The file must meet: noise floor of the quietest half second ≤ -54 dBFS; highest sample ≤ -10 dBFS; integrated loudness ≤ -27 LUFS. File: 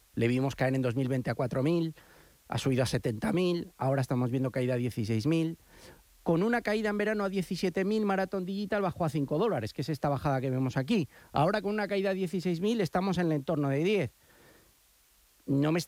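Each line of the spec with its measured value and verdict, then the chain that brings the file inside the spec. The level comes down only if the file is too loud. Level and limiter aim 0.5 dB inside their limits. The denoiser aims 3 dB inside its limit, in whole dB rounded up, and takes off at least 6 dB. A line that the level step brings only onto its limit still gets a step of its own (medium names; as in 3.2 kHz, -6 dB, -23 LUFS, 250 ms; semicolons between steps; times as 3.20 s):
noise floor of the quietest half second -65 dBFS: pass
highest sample -15.5 dBFS: pass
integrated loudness -30.5 LUFS: pass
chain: none needed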